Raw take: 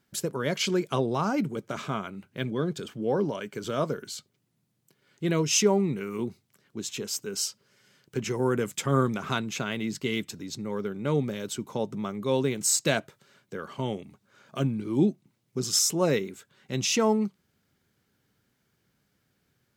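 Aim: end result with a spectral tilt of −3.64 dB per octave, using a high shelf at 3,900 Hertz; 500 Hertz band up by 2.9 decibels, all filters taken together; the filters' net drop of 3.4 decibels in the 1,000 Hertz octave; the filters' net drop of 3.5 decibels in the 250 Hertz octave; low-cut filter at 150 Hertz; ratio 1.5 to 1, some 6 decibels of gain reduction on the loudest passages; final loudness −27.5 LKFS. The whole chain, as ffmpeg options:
ffmpeg -i in.wav -af "highpass=150,equalizer=frequency=250:width_type=o:gain=-6,equalizer=frequency=500:width_type=o:gain=7,equalizer=frequency=1000:width_type=o:gain=-7,highshelf=frequency=3900:gain=7.5,acompressor=threshold=-31dB:ratio=1.5,volume=3dB" out.wav

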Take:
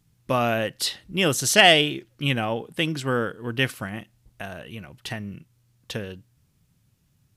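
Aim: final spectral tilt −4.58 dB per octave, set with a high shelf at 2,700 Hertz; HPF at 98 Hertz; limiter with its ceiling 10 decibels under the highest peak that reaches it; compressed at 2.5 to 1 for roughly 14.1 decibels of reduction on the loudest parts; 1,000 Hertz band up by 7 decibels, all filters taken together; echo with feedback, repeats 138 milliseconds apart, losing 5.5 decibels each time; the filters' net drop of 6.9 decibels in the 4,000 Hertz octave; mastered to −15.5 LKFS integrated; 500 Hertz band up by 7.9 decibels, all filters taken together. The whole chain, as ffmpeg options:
ffmpeg -i in.wav -af "highpass=98,equalizer=frequency=500:width_type=o:gain=8,equalizer=frequency=1000:width_type=o:gain=7.5,highshelf=frequency=2700:gain=-6,equalizer=frequency=4000:width_type=o:gain=-6.5,acompressor=threshold=-29dB:ratio=2.5,alimiter=limit=-23.5dB:level=0:latency=1,aecho=1:1:138|276|414|552|690|828|966:0.531|0.281|0.149|0.079|0.0419|0.0222|0.0118,volume=19dB" out.wav

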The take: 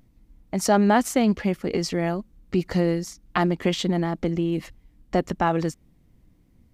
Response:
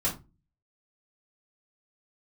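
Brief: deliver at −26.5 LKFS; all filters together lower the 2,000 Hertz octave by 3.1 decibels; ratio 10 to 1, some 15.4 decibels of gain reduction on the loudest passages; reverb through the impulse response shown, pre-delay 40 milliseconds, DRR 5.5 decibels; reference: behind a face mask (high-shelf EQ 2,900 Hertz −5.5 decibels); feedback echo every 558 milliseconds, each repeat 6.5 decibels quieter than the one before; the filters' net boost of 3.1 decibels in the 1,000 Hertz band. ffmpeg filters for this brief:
-filter_complex "[0:a]equalizer=frequency=1000:width_type=o:gain=5.5,equalizer=frequency=2000:width_type=o:gain=-4,acompressor=threshold=-28dB:ratio=10,aecho=1:1:558|1116|1674|2232|2790|3348:0.473|0.222|0.105|0.0491|0.0231|0.0109,asplit=2[link_01][link_02];[1:a]atrim=start_sample=2205,adelay=40[link_03];[link_02][link_03]afir=irnorm=-1:irlink=0,volume=-13dB[link_04];[link_01][link_04]amix=inputs=2:normalize=0,highshelf=frequency=2900:gain=-5.5,volume=5.5dB"

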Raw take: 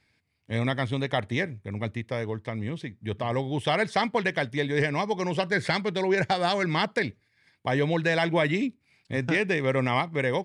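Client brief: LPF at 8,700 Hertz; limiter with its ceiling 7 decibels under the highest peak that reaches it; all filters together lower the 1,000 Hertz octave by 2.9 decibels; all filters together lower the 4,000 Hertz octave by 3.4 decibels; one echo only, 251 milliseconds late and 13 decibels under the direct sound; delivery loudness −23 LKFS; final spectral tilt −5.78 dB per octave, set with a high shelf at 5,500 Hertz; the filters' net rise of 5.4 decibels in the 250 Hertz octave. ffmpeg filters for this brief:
ffmpeg -i in.wav -af "lowpass=8700,equalizer=frequency=250:width_type=o:gain=7.5,equalizer=frequency=1000:width_type=o:gain=-4.5,equalizer=frequency=4000:width_type=o:gain=-5.5,highshelf=frequency=5500:gain=4,alimiter=limit=-18.5dB:level=0:latency=1,aecho=1:1:251:0.224,volume=5.5dB" out.wav

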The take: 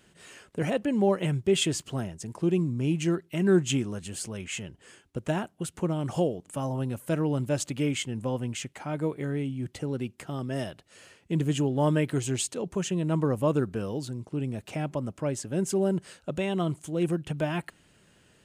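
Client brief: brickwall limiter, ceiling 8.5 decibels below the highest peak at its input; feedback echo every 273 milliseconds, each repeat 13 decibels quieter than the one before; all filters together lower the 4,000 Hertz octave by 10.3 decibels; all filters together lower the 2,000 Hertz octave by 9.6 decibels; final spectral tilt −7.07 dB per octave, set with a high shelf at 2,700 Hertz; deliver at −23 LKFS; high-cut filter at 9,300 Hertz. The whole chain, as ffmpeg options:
ffmpeg -i in.wav -af "lowpass=9300,equalizer=frequency=2000:width_type=o:gain=-8,highshelf=frequency=2700:gain=-8.5,equalizer=frequency=4000:width_type=o:gain=-3.5,alimiter=limit=-21dB:level=0:latency=1,aecho=1:1:273|546|819:0.224|0.0493|0.0108,volume=8.5dB" out.wav

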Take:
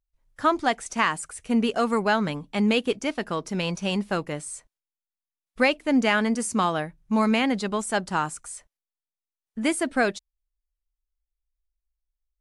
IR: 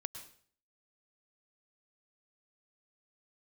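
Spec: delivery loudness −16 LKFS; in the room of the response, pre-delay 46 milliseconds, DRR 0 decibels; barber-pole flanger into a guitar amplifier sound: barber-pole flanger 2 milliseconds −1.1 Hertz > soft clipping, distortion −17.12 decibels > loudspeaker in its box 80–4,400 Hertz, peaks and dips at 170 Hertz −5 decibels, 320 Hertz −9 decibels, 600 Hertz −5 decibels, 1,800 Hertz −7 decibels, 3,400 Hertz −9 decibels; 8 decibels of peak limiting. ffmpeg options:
-filter_complex "[0:a]alimiter=limit=-16dB:level=0:latency=1,asplit=2[link_01][link_02];[1:a]atrim=start_sample=2205,adelay=46[link_03];[link_02][link_03]afir=irnorm=-1:irlink=0,volume=2dB[link_04];[link_01][link_04]amix=inputs=2:normalize=0,asplit=2[link_05][link_06];[link_06]adelay=2,afreqshift=-1.1[link_07];[link_05][link_07]amix=inputs=2:normalize=1,asoftclip=threshold=-17dB,highpass=80,equalizer=frequency=170:width_type=q:width=4:gain=-5,equalizer=frequency=320:width_type=q:width=4:gain=-9,equalizer=frequency=600:width_type=q:width=4:gain=-5,equalizer=frequency=1800:width_type=q:width=4:gain=-7,equalizer=frequency=3400:width_type=q:width=4:gain=-9,lowpass=frequency=4400:width=0.5412,lowpass=frequency=4400:width=1.3066,volume=15dB"

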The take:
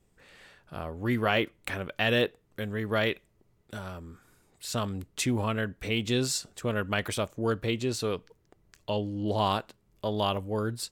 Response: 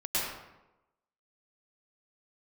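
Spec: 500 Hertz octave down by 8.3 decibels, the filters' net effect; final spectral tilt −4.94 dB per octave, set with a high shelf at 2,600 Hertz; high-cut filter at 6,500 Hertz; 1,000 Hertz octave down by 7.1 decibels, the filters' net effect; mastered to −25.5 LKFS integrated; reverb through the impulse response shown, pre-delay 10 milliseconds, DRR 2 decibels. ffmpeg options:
-filter_complex "[0:a]lowpass=6500,equalizer=frequency=500:width_type=o:gain=-9,equalizer=frequency=1000:width_type=o:gain=-5,highshelf=frequency=2600:gain=-8,asplit=2[link_01][link_02];[1:a]atrim=start_sample=2205,adelay=10[link_03];[link_02][link_03]afir=irnorm=-1:irlink=0,volume=-10.5dB[link_04];[link_01][link_04]amix=inputs=2:normalize=0,volume=7.5dB"

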